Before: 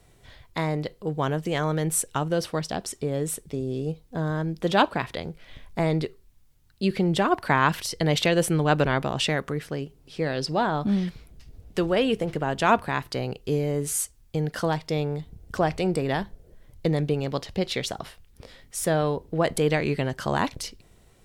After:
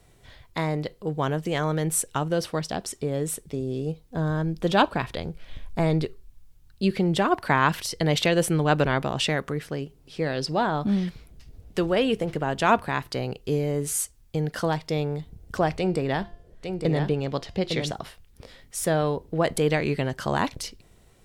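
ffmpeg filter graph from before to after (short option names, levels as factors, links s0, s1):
-filter_complex "[0:a]asettb=1/sr,asplit=3[s0][s1][s2];[s0]atrim=end=4.174[s3];[s1]atrim=start=4.17:end=6.9,asetpts=PTS-STARTPTS,afade=t=in:d=0.004:c=qsin,afade=t=out:st=2.726:d=0.004:c=qsin,lowshelf=f=75:g=10.5,bandreject=f=2000:w=16[s4];[s2]atrim=start=6.896[s5];[s3][s4]acrossfade=d=0.004:c1=hsin:c2=qsin[s6];[s6][s5]acrossfade=d=0.004:c1=qsin:c2=hsin,asettb=1/sr,asplit=3[s7][s8][s9];[s7]atrim=end=15.774[s10];[s8]atrim=start=15.77:end=17.93,asetpts=PTS-STARTPTS,afade=t=in:d=0.004:c=qsin,afade=t=out:st=2.156:d=0.004:c=qsin,highshelf=f=10000:g=-10.5,bandreject=f=347:t=h:w=4,bandreject=f=694:t=h:w=4,bandreject=f=1041:t=h:w=4,bandreject=f=1388:t=h:w=4,bandreject=f=1735:t=h:w=4,bandreject=f=2082:t=h:w=4,bandreject=f=2429:t=h:w=4,bandreject=f=2776:t=h:w=4,bandreject=f=3123:t=h:w=4,bandreject=f=3470:t=h:w=4,bandreject=f=3817:t=h:w=4,bandreject=f=4164:t=h:w=4,bandreject=f=4511:t=h:w=4,bandreject=f=4858:t=h:w=4,bandreject=f=5205:t=h:w=4,bandreject=f=5552:t=h:w=4,bandreject=f=5899:t=h:w=4,bandreject=f=6246:t=h:w=4,bandreject=f=6593:t=h:w=4,bandreject=f=6940:t=h:w=4,bandreject=f=7287:t=h:w=4,bandreject=f=7634:t=h:w=4,bandreject=f=7981:t=h:w=4,aecho=1:1:855:0.473,atrim=end_sample=95256[s11];[s9]atrim=start=17.926[s12];[s10][s11]acrossfade=d=0.004:c1=hsin:c2=qsin[s13];[s13][s12]acrossfade=d=0.004:c1=qsin:c2=hsin"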